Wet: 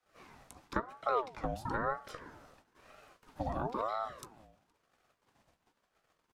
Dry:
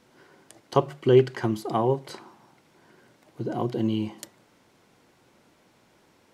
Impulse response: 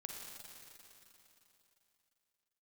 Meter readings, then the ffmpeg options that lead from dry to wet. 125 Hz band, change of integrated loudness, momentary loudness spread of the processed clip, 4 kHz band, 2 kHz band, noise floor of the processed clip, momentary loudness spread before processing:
-16.5 dB, -11.5 dB, 20 LU, -13.5 dB, -2.5 dB, -80 dBFS, 18 LU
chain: -filter_complex "[0:a]agate=range=-19dB:threshold=-58dB:ratio=16:detection=peak,acrossover=split=220|960[a][b][c];[a]acompressor=threshold=-39dB:ratio=4[d];[b]acompressor=threshold=-34dB:ratio=4[e];[c]acompressor=threshold=-51dB:ratio=4[f];[d][e][f]amix=inputs=3:normalize=0,asplit=2[g][h];[h]adelay=16,volume=-13dB[i];[g][i]amix=inputs=2:normalize=0,asplit=2[j][k];[k]adelay=466.5,volume=-25dB,highshelf=f=4k:g=-10.5[l];[j][l]amix=inputs=2:normalize=0,aeval=exprs='val(0)*sin(2*PI*690*n/s+690*0.45/1*sin(2*PI*1*n/s))':c=same,volume=1dB"

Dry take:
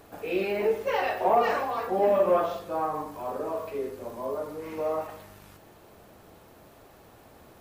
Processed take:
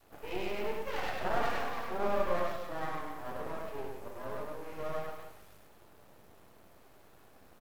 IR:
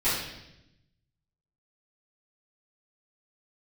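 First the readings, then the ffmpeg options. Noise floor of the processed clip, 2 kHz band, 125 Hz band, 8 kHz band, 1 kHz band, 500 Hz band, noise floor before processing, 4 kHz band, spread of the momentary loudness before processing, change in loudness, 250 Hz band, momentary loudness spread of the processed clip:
-58 dBFS, -4.5 dB, -2.0 dB, n/a, -9.0 dB, -10.5 dB, -54 dBFS, -3.0 dB, 12 LU, -9.5 dB, -8.0 dB, 11 LU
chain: -filter_complex "[0:a]adynamicequalizer=threshold=0.02:dfrequency=360:dqfactor=0.75:tfrequency=360:tqfactor=0.75:attack=5:release=100:ratio=0.375:range=2.5:mode=cutabove:tftype=bell,aeval=exprs='max(val(0),0)':c=same,asplit=2[a][b];[b]aecho=0:1:102|277:0.794|0.316[c];[a][c]amix=inputs=2:normalize=0,volume=-5.5dB"

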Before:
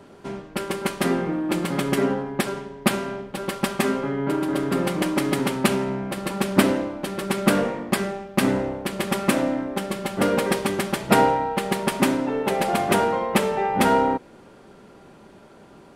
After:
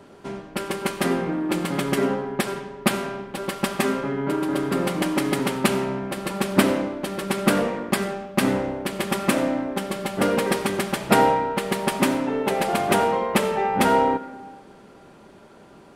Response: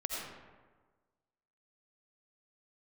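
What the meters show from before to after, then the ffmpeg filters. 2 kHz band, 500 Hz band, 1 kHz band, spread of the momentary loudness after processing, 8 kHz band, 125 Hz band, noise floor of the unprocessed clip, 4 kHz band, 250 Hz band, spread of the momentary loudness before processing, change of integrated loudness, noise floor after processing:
+0.5 dB, 0.0 dB, +0.5 dB, 9 LU, 0.0 dB, -1.0 dB, -48 dBFS, +0.5 dB, -0.5 dB, 8 LU, 0.0 dB, -48 dBFS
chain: -filter_complex "[0:a]asplit=2[a][b];[b]highpass=f=280:p=1[c];[1:a]atrim=start_sample=2205[d];[c][d]afir=irnorm=-1:irlink=0,volume=-12dB[e];[a][e]amix=inputs=2:normalize=0,volume=-1.5dB"

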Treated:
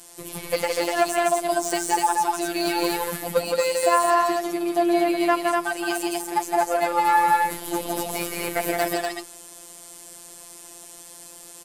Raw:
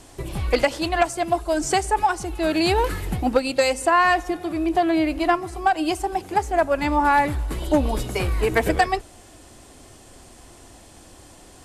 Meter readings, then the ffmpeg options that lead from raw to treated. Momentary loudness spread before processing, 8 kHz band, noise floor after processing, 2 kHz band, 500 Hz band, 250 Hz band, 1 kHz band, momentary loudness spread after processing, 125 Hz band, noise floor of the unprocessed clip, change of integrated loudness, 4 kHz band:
7 LU, +4.5 dB, -44 dBFS, -2.5 dB, -1.0 dB, -3.0 dB, -0.5 dB, 21 LU, -13.0 dB, -48 dBFS, -1.0 dB, -1.0 dB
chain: -filter_complex "[0:a]aemphasis=mode=production:type=bsi,aecho=1:1:166.2|244.9:0.631|0.708,acrossover=split=170|1600[a][b][c];[c]asoftclip=type=tanh:threshold=-24.5dB[d];[a][b][d]amix=inputs=3:normalize=0,afftfilt=real='hypot(re,im)*cos(PI*b)':imag='0':win_size=1024:overlap=0.75"

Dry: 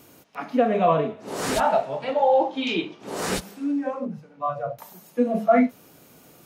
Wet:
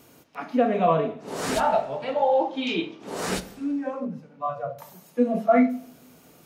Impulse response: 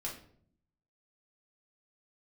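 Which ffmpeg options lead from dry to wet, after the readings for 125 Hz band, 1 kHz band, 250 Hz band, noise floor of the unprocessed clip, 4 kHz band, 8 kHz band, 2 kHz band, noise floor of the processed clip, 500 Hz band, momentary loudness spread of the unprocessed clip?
-1.0 dB, -1.5 dB, 0.0 dB, -53 dBFS, -1.5 dB, -2.5 dB, -1.5 dB, -54 dBFS, -1.5 dB, 14 LU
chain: -filter_complex "[0:a]asplit=2[a][b];[b]lowpass=11k[c];[1:a]atrim=start_sample=2205[d];[c][d]afir=irnorm=-1:irlink=0,volume=-8.5dB[e];[a][e]amix=inputs=2:normalize=0,volume=-3.5dB"

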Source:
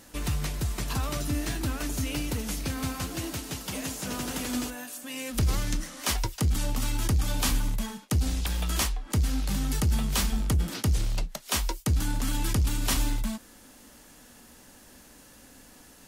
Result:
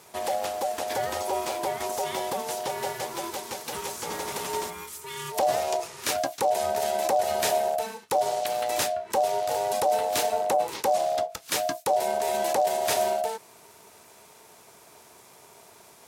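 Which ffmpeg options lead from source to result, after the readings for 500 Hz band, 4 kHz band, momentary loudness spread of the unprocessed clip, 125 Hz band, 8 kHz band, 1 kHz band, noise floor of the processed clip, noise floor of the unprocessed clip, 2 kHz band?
+15.5 dB, 0.0 dB, 6 LU, -20.0 dB, 0.0 dB, +13.5 dB, -53 dBFS, -53 dBFS, +1.5 dB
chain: -af "aeval=exprs='val(0)*sin(2*PI*670*n/s)':c=same,highpass=96,volume=3dB"

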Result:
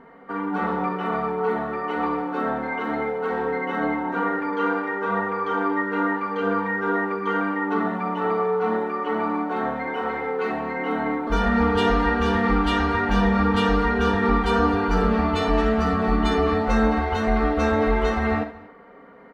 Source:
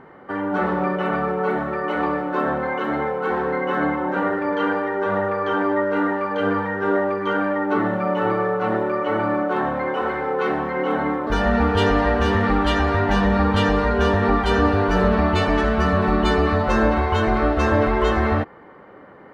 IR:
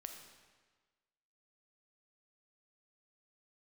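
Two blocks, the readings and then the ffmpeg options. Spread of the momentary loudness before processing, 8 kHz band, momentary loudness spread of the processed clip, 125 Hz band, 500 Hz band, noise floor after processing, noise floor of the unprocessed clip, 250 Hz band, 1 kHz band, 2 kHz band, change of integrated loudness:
5 LU, n/a, 6 LU, -5.0 dB, -3.5 dB, -44 dBFS, -45 dBFS, -1.5 dB, -1.5 dB, -2.5 dB, -2.5 dB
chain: -filter_complex "[0:a]aecho=1:1:4.3:0.89,aecho=1:1:232:0.0891[a];[1:a]atrim=start_sample=2205,atrim=end_sample=3969[b];[a][b]afir=irnorm=-1:irlink=0"

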